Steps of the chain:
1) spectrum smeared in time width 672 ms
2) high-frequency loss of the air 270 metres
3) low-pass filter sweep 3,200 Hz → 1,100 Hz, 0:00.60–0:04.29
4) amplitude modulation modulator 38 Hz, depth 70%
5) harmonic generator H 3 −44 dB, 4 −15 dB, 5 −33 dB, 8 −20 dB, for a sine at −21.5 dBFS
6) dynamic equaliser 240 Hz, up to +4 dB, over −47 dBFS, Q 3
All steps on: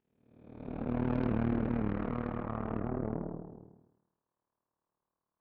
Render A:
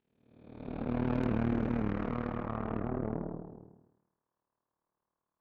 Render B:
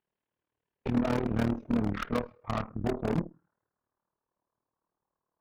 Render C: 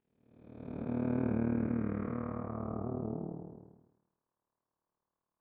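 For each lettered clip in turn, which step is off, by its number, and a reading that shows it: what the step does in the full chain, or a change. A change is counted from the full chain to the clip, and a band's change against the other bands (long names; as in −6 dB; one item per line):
2, change in momentary loudness spread +2 LU
1, 2 kHz band +3.0 dB
5, change in integrated loudness −1.5 LU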